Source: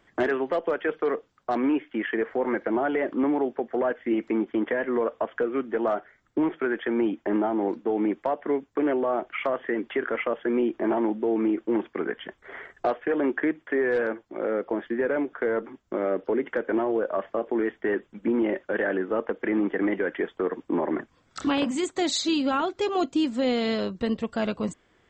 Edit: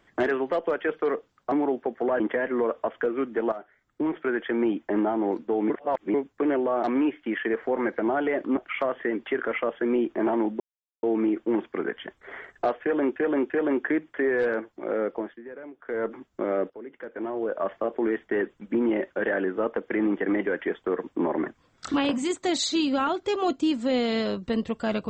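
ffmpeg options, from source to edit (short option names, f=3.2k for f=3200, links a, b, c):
-filter_complex "[0:a]asplit=14[a][b][c][d][e][f][g][h][i][j][k][l][m][n];[a]atrim=end=1.522[o];[b]atrim=start=3.248:end=3.932[p];[c]atrim=start=4.568:end=5.89,asetpts=PTS-STARTPTS,afade=t=out:st=1.318:d=0.004:c=hsin:silence=0.223872[q];[d]atrim=start=5.89:end=8.072,asetpts=PTS-STARTPTS,afade=t=in:d=0.8:silence=0.223872[r];[e]atrim=start=8.068:end=8.512,asetpts=PTS-STARTPTS,areverse[s];[f]atrim=start=8.508:end=9.212[t];[g]atrim=start=1.518:end=3.252[u];[h]atrim=start=9.208:end=11.24,asetpts=PTS-STARTPTS,afade=t=out:st=2.028:d=0.004:c=hsin,apad=pad_dur=0.43[v];[i]atrim=start=11.24:end=13.372,asetpts=PTS-STARTPTS,afade=t=in:d=0.004:c=hsin[w];[j]atrim=start=13.028:end=13.372[x];[k]atrim=start=13.028:end=14.92,asetpts=PTS-STARTPTS,afade=t=out:st=1.602:d=0.29:silence=0.16788[y];[l]atrim=start=14.92:end=15.32,asetpts=PTS-STARTPTS,volume=-15.5dB[z];[m]atrim=start=15.32:end=16.23,asetpts=PTS-STARTPTS,afade=t=in:d=0.29:silence=0.16788,afade=t=out:st=0.906:d=0.004:c=hsin:silence=0.158489[aa];[n]atrim=start=16.23,asetpts=PTS-STARTPTS,afade=t=in:d=0.94:c=qua:silence=0.158489[ab];[o][p]acrossfade=d=0.004:c1=hsin:c2=hsin[ac];[q][r]concat=n=2:v=0:a=1[ad];[ac][ad]acrossfade=d=0.004:c1=hsin:c2=hsin[ae];[ae][s]acrossfade=d=0.004:c1=hsin:c2=hsin[af];[af][t]acrossfade=d=0.004:c1=hsin:c2=hsin[ag];[ag][u]acrossfade=d=0.004:c1=hsin:c2=hsin[ah];[v][w]concat=n=2:v=0:a=1[ai];[ah][ai]acrossfade=d=0.004:c1=hsin:c2=hsin[aj];[aj][x]acrossfade=d=0.004:c1=hsin:c2=hsin[ak];[y][z][aa][ab]concat=n=4:v=0:a=1[al];[ak][al]acrossfade=d=0.004:c1=hsin:c2=hsin"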